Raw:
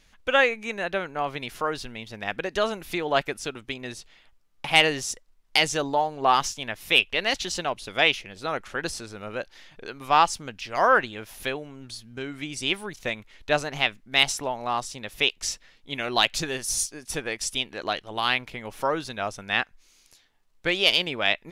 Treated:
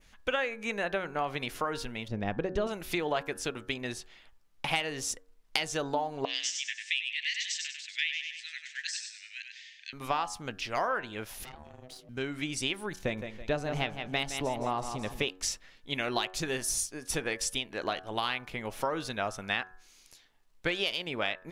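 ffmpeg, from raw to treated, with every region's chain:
-filter_complex "[0:a]asettb=1/sr,asplit=3[s0][s1][s2];[s0]atrim=end=2.084[s3];[s1]atrim=start=2.08:end=2.67,asetpts=PTS-STARTPTS,afade=t=in:d=0.004:c=qsin,afade=t=out:st=0.586:d=0.004:c=qsin,lowpass=7900,tiltshelf=f=700:g=9.5[s4];[s2]atrim=start=2.666[s5];[s3][s4]acrossfade=d=0.004:c1=hsin:c2=qsin[s6];[s6][s5]acrossfade=d=0.004:c1=qsin:c2=hsin,asettb=1/sr,asplit=3[s7][s8][s9];[s7]atrim=end=6.254[s10];[s8]atrim=start=6.25:end=9.93,asetpts=PTS-STARTPTS,afade=t=in:d=0.004:c=qsin,afade=t=out:st=3.676:d=0.004:c=qsin,asuperpass=centerf=4000:order=20:qfactor=0.61,aecho=1:1:97|194|291|388:0.531|0.186|0.065|0.0228,atrim=end_sample=162288[s11];[s9]atrim=start=9.926[s12];[s10][s11]acrossfade=d=0.004:c1=hsin:c2=qsin[s13];[s13][s12]acrossfade=d=0.004:c1=qsin:c2=hsin,asettb=1/sr,asplit=3[s14][s15][s16];[s14]atrim=end=11.444[s17];[s15]atrim=start=11.44:end=12.09,asetpts=PTS-STARTPTS,afade=t=in:d=0.004:c=qsin,afade=t=out:st=0.646:d=0.004:c=qsin,acompressor=threshold=0.0158:ratio=5:attack=3.2:release=140:knee=1:detection=peak,aeval=exprs='val(0)*sin(2*PI*380*n/s)':c=same,aeval=exprs='(tanh(63.1*val(0)+0.8)-tanh(0.8))/63.1':c=same[s18];[s16]atrim=start=12.086[s19];[s17][s18]acrossfade=d=0.004:c1=hsin:c2=qsin[s20];[s20][s19]acrossfade=d=0.004:c1=qsin:c2=hsin,asettb=1/sr,asplit=3[s21][s22][s23];[s21]atrim=end=13.014[s24];[s22]atrim=start=13.01:end=15.3,asetpts=PTS-STARTPTS,afade=t=in:d=0.004:c=qsin,afade=t=out:st=2.286:d=0.004:c=qsin,tiltshelf=f=720:g=5.5,aecho=1:1:164|328|492|656:0.282|0.107|0.0407|0.0155,atrim=end_sample=100989[s25];[s23]atrim=start=15.296[s26];[s24][s25]acrossfade=d=0.004:c1=hsin:c2=qsin[s27];[s27][s26]acrossfade=d=0.004:c1=qsin:c2=hsin,acompressor=threshold=0.0501:ratio=12,bandreject=f=92.82:t=h:w=4,bandreject=f=185.64:t=h:w=4,bandreject=f=278.46:t=h:w=4,bandreject=f=371.28:t=h:w=4,bandreject=f=464.1:t=h:w=4,bandreject=f=556.92:t=h:w=4,bandreject=f=649.74:t=h:w=4,bandreject=f=742.56:t=h:w=4,bandreject=f=835.38:t=h:w=4,bandreject=f=928.2:t=h:w=4,bandreject=f=1021.02:t=h:w=4,bandreject=f=1113.84:t=h:w=4,bandreject=f=1206.66:t=h:w=4,bandreject=f=1299.48:t=h:w=4,bandreject=f=1392.3:t=h:w=4,bandreject=f=1485.12:t=h:w=4,bandreject=f=1577.94:t=h:w=4,bandreject=f=1670.76:t=h:w=4,bandreject=f=1763.58:t=h:w=4,adynamicequalizer=threshold=0.00562:dfrequency=4300:dqfactor=1:tfrequency=4300:tqfactor=1:attack=5:release=100:ratio=0.375:range=2:mode=cutabove:tftype=bell"

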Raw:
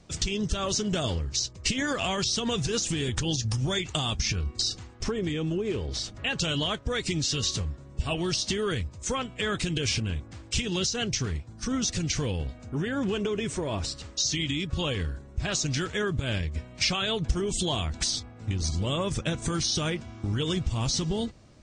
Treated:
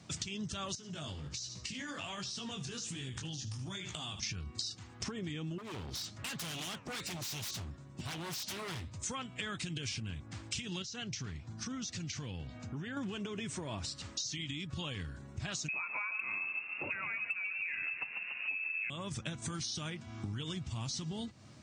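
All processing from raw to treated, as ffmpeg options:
-filter_complex "[0:a]asettb=1/sr,asplit=3[s0][s1][s2];[s0]atrim=end=0.754[s3];[s1]atrim=start=0.75:end=4.23,asetpts=PTS-STARTPTS,afade=t=in:d=0.004:c=qsin,afade=t=out:st=3.476:d=0.004:c=qsin,aecho=1:1:75|150|225:0.168|0.0571|0.0194,atrim=end_sample=153468,flanger=delay=15.5:depth=5.7:speed=1.3,acompressor=threshold=0.0158:ratio=10:attack=3.2:release=140:knee=1:detection=peak[s4];[s2]atrim=start=4.226[s5];[s3][s4]acrossfade=d=0.004:c1=hsin:c2=qsin[s6];[s6][s5]acrossfade=d=0.004:c1=qsin:c2=hsin,asettb=1/sr,asplit=3[s7][s8][s9];[s7]atrim=end=5.584[s10];[s8]atrim=start=5.58:end=8.94,asetpts=PTS-STARTPTS,afade=t=in:d=0.004:c=qsin,afade=t=out:st=3.356:d=0.004:c=qsin,flanger=delay=2.5:depth=9.6:regen=83:speed=1.1:shape=sinusoidal,aeval=exprs='0.0237*(abs(mod(val(0)/0.0237+3,4)-2)-1)':c=same[s11];[s9]atrim=start=8.936[s12];[s10][s11]acrossfade=d=0.004:c1=hsin:c2=qsin[s13];[s13][s12]acrossfade=d=0.004:c1=qsin:c2=hsin,asettb=1/sr,asplit=3[s14][s15][s16];[s14]atrim=end=10.824[s17];[s15]atrim=start=10.82:end=12.97,asetpts=PTS-STARTPTS,afade=t=in:d=0.004:c=qsin,afade=t=out:st=2.146:d=0.004:c=qsin,lowpass=f=7500:w=0.5412,lowpass=f=7500:w=1.3066,acompressor=threshold=0.0112:ratio=2:attack=3.2:release=140:knee=1:detection=peak[s18];[s16]atrim=start=12.966[s19];[s17][s18]acrossfade=d=0.004:c1=hsin:c2=qsin[s20];[s20][s19]acrossfade=d=0.004:c1=qsin:c2=hsin,asettb=1/sr,asplit=3[s21][s22][s23];[s21]atrim=end=15.684[s24];[s22]atrim=start=15.68:end=18.9,asetpts=PTS-STARTPTS,afade=t=in:d=0.004:c=qsin,afade=t=out:st=3.216:d=0.004:c=qsin,lowpass=f=2300:t=q:w=0.5098,lowpass=f=2300:t=q:w=0.6013,lowpass=f=2300:t=q:w=0.9,lowpass=f=2300:t=q:w=2.563,afreqshift=-2700,asplit=9[s25][s26][s27][s28][s29][s30][s31][s32][s33];[s26]adelay=143,afreqshift=41,volume=0.316[s34];[s27]adelay=286,afreqshift=82,volume=0.195[s35];[s28]adelay=429,afreqshift=123,volume=0.122[s36];[s29]adelay=572,afreqshift=164,volume=0.075[s37];[s30]adelay=715,afreqshift=205,volume=0.0468[s38];[s31]adelay=858,afreqshift=246,volume=0.0288[s39];[s32]adelay=1001,afreqshift=287,volume=0.018[s40];[s33]adelay=1144,afreqshift=328,volume=0.0111[s41];[s25][s34][s35][s36][s37][s38][s39][s40][s41]amix=inputs=9:normalize=0,atrim=end_sample=142002,acontrast=27[s42];[s23]atrim=start=18.896[s43];[s24][s42]acrossfade=d=0.004:c1=hsin:c2=qsin[s44];[s44][s43]acrossfade=d=0.004:c1=qsin:c2=hsin,highpass=f=91:w=0.5412,highpass=f=91:w=1.3066,equalizer=f=460:t=o:w=1:g=-8,acompressor=threshold=0.01:ratio=5,volume=1.26"

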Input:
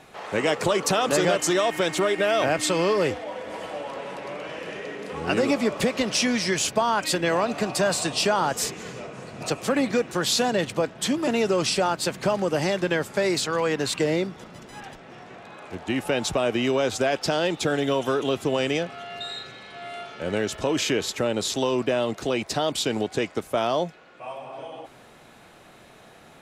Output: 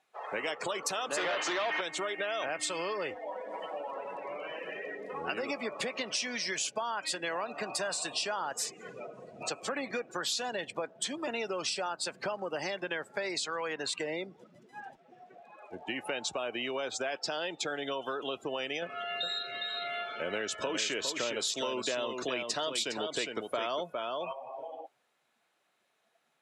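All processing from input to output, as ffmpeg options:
-filter_complex "[0:a]asettb=1/sr,asplit=3[s0][s1][s2];[s0]atrim=end=1.174[s3];[s1]atrim=start=1.17:end=1.81,asetpts=PTS-STARTPTS,afade=t=in:d=0.004:c=qsin,afade=t=out:st=0.636:d=0.004:c=qsin,highpass=140,lowpass=5400,asplit=2[s4][s5];[s5]highpass=f=720:p=1,volume=28.2,asoftclip=type=tanh:threshold=0.335[s6];[s4][s6]amix=inputs=2:normalize=0,lowpass=f=1900:p=1,volume=0.501[s7];[s2]atrim=start=1.806[s8];[s3][s7]acrossfade=d=0.004:c1=hsin:c2=qsin[s9];[s9][s8]acrossfade=d=0.004:c1=qsin:c2=hsin,asettb=1/sr,asplit=3[s10][s11][s12];[s10]atrim=end=18.824[s13];[s11]atrim=start=18.82:end=24.33,asetpts=PTS-STARTPTS,afade=t=in:d=0.004:c=qsin,afade=t=out:st=5.506:d=0.004:c=qsin,bandreject=f=790:w=6.7,acontrast=29,aecho=1:1:408:0.473,atrim=end_sample=242991[s14];[s12]atrim=start=24.326[s15];[s13][s14]acrossfade=d=0.004:c1=hsin:c2=qsin[s16];[s16][s15]acrossfade=d=0.004:c1=qsin:c2=hsin,afftdn=nr=24:nf=-35,highpass=f=1000:p=1,acompressor=threshold=0.0158:ratio=3,volume=1.26"

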